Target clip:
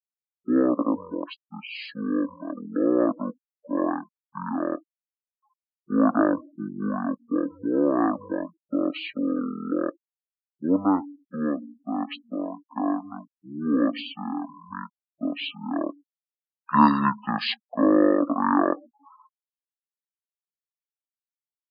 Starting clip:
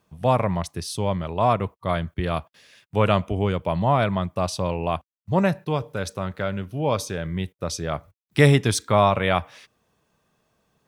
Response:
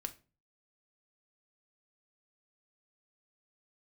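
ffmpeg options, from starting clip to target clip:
-af "highpass=f=430:w=0.5412,highpass=f=430:w=1.3066,equalizer=f=550:t=q:w=4:g=5,equalizer=f=810:t=q:w=4:g=-10,equalizer=f=2100:t=q:w=4:g=7,equalizer=f=4000:t=q:w=4:g=-8,lowpass=f=8500:w=0.5412,lowpass=f=8500:w=1.3066,afftfilt=real='re*gte(hypot(re,im),0.0178)':imag='im*gte(hypot(re,im),0.0178)':win_size=1024:overlap=0.75,asetrate=22094,aresample=44100"

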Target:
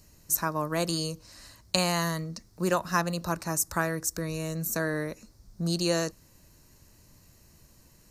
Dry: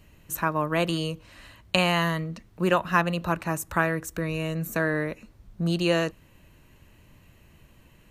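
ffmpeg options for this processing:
-af "highshelf=f=3900:t=q:w=3:g=9,volume=0.668"

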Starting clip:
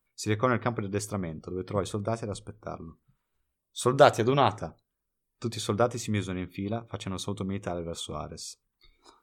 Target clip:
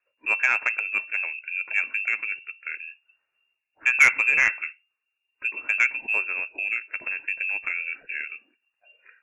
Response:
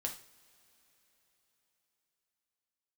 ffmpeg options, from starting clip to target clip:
-af "lowpass=f=2400:t=q:w=0.5098,lowpass=f=2400:t=q:w=0.6013,lowpass=f=2400:t=q:w=0.9,lowpass=f=2400:t=q:w=2.563,afreqshift=-2800,aeval=exprs='0.596*(cos(1*acos(clip(val(0)/0.596,-1,1)))-cos(1*PI/2))+0.0668*(cos(5*acos(clip(val(0)/0.596,-1,1)))-cos(5*PI/2))':c=same"

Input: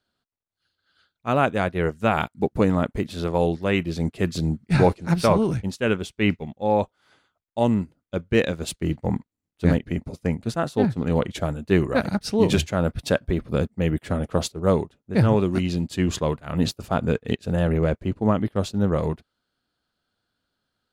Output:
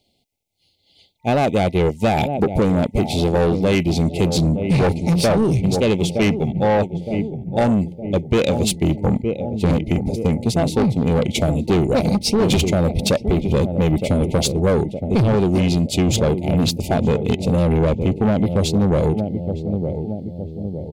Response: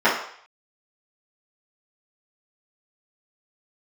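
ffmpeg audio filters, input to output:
-filter_complex "[0:a]asplit=2[s0][s1];[s1]adelay=914,lowpass=f=830:p=1,volume=0.224,asplit=2[s2][s3];[s3]adelay=914,lowpass=f=830:p=1,volume=0.55,asplit=2[s4][s5];[s5]adelay=914,lowpass=f=830:p=1,volume=0.55,asplit=2[s6][s7];[s7]adelay=914,lowpass=f=830:p=1,volume=0.55,asplit=2[s8][s9];[s9]adelay=914,lowpass=f=830:p=1,volume=0.55,asplit=2[s10][s11];[s11]adelay=914,lowpass=f=830:p=1,volume=0.55[s12];[s0][s2][s4][s6][s8][s10][s12]amix=inputs=7:normalize=0,asplit=2[s13][s14];[s14]acontrast=79,volume=1.12[s15];[s13][s15]amix=inputs=2:normalize=0,afftfilt=real='re*(1-between(b*sr/4096,900,2000))':imag='im*(1-between(b*sr/4096,900,2000))':win_size=4096:overlap=0.75,asoftclip=type=tanh:threshold=0.316,acompressor=threshold=0.158:ratio=6,volume=1.26"

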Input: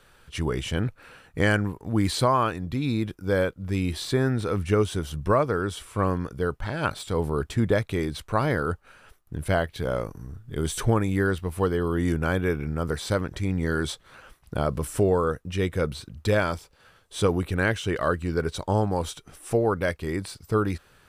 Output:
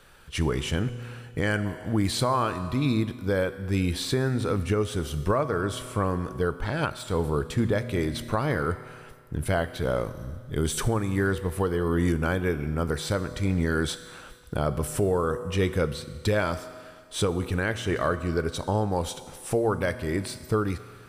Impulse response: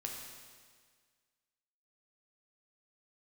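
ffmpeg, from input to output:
-filter_complex "[0:a]asplit=2[s0][s1];[1:a]atrim=start_sample=2205,highshelf=f=11000:g=7.5[s2];[s1][s2]afir=irnorm=-1:irlink=0,volume=0.473[s3];[s0][s3]amix=inputs=2:normalize=0,alimiter=limit=0.211:level=0:latency=1:release=481"

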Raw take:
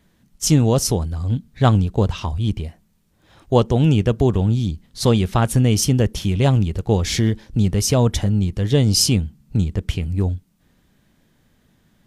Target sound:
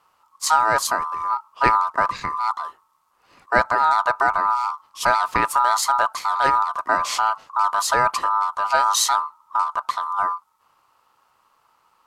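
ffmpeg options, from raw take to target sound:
-af "aeval=exprs='val(0)*sin(2*PI*1100*n/s)':c=same"

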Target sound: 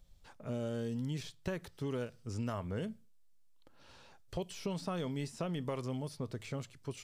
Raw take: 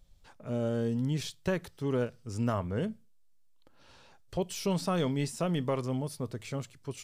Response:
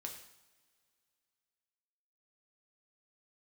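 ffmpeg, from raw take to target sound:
-filter_complex "[0:a]acrossover=split=2100|6500[s0][s1][s2];[s0]acompressor=threshold=0.02:ratio=4[s3];[s1]acompressor=threshold=0.00316:ratio=4[s4];[s2]acompressor=threshold=0.001:ratio=4[s5];[s3][s4][s5]amix=inputs=3:normalize=0,volume=0.891"

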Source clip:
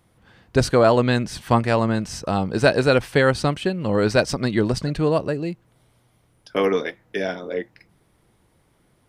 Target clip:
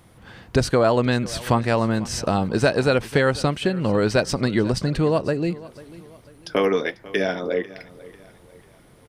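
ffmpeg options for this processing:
-af "acompressor=threshold=0.0224:ratio=2,aecho=1:1:494|988|1482:0.106|0.0434|0.0178,volume=2.82"

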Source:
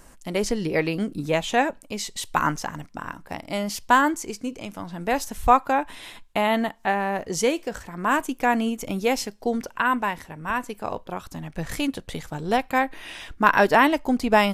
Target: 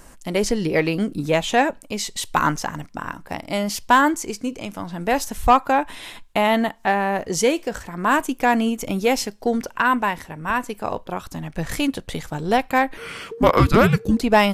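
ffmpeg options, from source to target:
-filter_complex "[0:a]acontrast=66,asettb=1/sr,asplit=3[s0][s1][s2];[s0]atrim=end=12.974[s3];[s1]atrim=start=12.97:end=14.21,asetpts=PTS-STARTPTS,afade=t=in:d=0.004:c=qsin,afade=t=out:st=1.236:d=0.004:c=qsin,afreqshift=-470[s4];[s2]atrim=start=14.206[s5];[s3][s4]acrossfade=d=0.004:c1=hsin:c2=qsin[s6];[s6][s5]acrossfade=d=0.004:c1=qsin:c2=hsin,volume=0.75"

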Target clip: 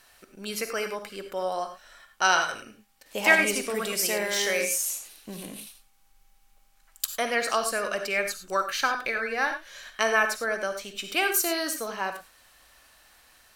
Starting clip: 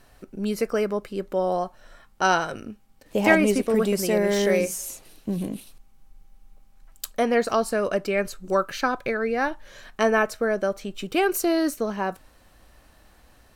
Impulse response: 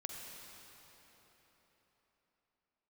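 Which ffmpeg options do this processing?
-filter_complex "[0:a]tiltshelf=f=670:g=-10[s0];[1:a]atrim=start_sample=2205,afade=t=out:st=0.16:d=0.01,atrim=end_sample=7497[s1];[s0][s1]afir=irnorm=-1:irlink=0,volume=0.841"

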